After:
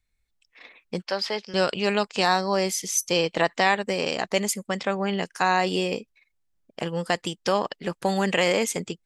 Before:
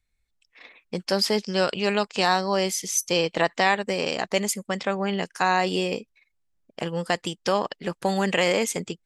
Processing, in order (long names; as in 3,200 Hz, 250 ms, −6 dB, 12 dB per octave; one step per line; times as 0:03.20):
0:01.02–0:01.54: three-way crossover with the lows and the highs turned down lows −13 dB, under 500 Hz, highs −19 dB, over 4,900 Hz
0:02.23–0:02.69: notch filter 3,000 Hz, Q 9.5